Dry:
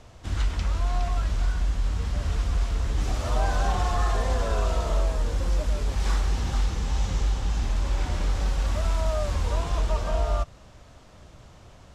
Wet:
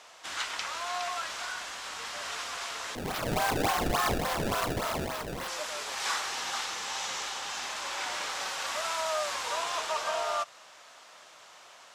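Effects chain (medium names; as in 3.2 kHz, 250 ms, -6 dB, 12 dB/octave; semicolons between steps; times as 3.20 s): high-pass 970 Hz 12 dB/octave; 2.95–5.48 s: decimation with a swept rate 24×, swing 160% 3.5 Hz; trim +6 dB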